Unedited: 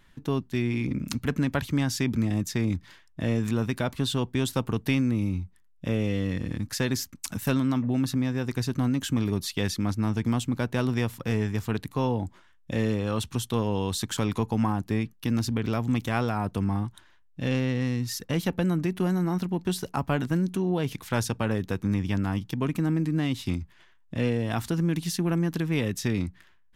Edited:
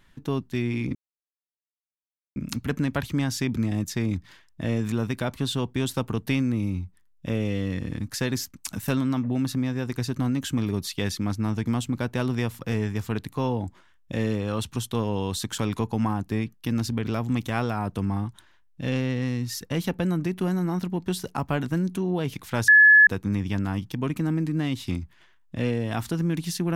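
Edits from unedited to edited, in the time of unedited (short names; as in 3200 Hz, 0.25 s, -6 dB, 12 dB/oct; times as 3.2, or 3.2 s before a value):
0.95 insert silence 1.41 s
21.27–21.66 bleep 1710 Hz -10 dBFS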